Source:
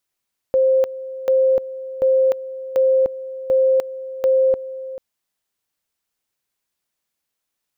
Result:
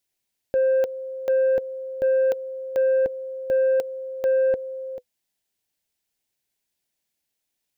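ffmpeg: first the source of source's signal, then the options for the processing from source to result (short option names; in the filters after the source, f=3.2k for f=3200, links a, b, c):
-f lavfi -i "aevalsrc='pow(10,(-12-15.5*gte(mod(t,0.74),0.3))/20)*sin(2*PI*526*t)':d=4.44:s=44100"
-af "equalizer=f=1.2k:t=o:w=0.59:g=-10.5,bandreject=f=500:w=16,asoftclip=type=tanh:threshold=-15dB"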